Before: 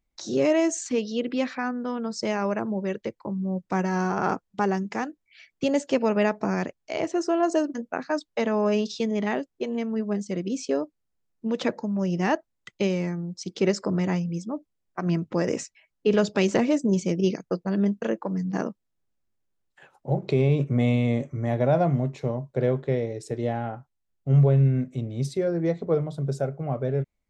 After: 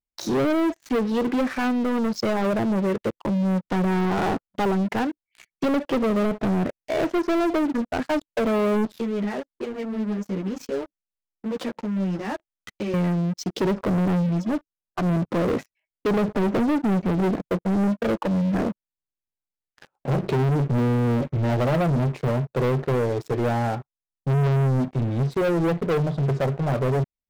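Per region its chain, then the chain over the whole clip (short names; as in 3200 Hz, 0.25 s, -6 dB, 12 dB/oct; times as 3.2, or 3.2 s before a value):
8.85–12.94 compressor 2.5:1, threshold -35 dBFS + ensemble effect
whole clip: treble ducked by the level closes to 540 Hz, closed at -18 dBFS; high shelf 3500 Hz -9 dB; sample leveller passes 5; gain -7.5 dB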